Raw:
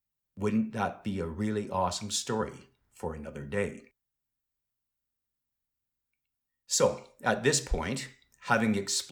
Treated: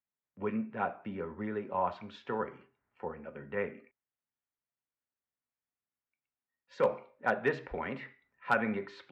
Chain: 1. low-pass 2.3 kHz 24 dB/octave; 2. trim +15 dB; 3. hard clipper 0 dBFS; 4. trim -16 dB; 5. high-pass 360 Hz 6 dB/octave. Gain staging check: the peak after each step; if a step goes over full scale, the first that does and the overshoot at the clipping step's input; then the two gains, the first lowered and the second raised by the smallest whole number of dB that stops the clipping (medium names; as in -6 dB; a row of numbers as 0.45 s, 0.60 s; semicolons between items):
-11.0 dBFS, +4.0 dBFS, 0.0 dBFS, -16.0 dBFS, -14.5 dBFS; step 2, 4.0 dB; step 2 +11 dB, step 4 -12 dB